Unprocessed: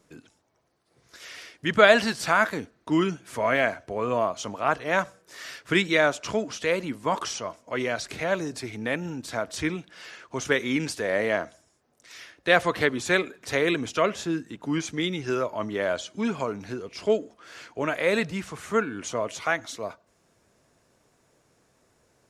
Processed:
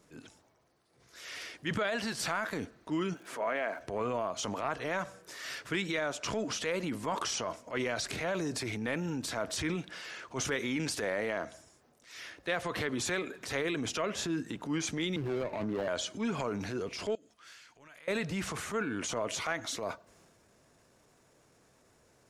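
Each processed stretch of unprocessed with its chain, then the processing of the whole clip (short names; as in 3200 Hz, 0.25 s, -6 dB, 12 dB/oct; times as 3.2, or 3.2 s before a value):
3.13–3.8 HPF 300 Hz + high shelf 2900 Hz -10 dB + crackle 130/s -47 dBFS
15.16–15.88 median filter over 41 samples + high shelf 5200 Hz -11 dB + three-band squash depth 40%
17.15–18.08 passive tone stack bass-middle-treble 5-5-5 + compressor 3:1, threshold -53 dBFS
whole clip: transient shaper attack -9 dB, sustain +5 dB; compressor 12:1, threshold -29 dBFS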